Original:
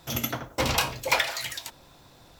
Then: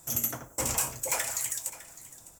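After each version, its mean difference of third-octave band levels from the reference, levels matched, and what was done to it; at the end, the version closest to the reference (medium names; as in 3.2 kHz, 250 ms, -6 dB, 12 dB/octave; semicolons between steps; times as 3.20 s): 6.5 dB: resonant high shelf 5.6 kHz +12.5 dB, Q 3; saturation -14.5 dBFS, distortion -9 dB; delay 606 ms -17 dB; trim -6.5 dB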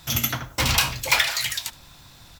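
3.5 dB: peaking EQ 460 Hz -13 dB 2.1 oct; delay 72 ms -23.5 dB; in parallel at -9 dB: integer overflow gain 23 dB; on the sum: trim +6 dB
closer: second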